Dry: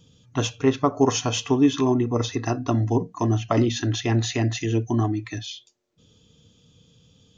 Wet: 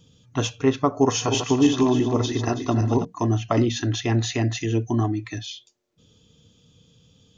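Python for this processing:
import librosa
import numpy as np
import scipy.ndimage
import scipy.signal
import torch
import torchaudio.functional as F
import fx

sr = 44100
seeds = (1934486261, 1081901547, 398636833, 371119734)

y = fx.reverse_delay_fb(x, sr, ms=163, feedback_pct=57, wet_db=-7.0, at=(1.02, 3.05))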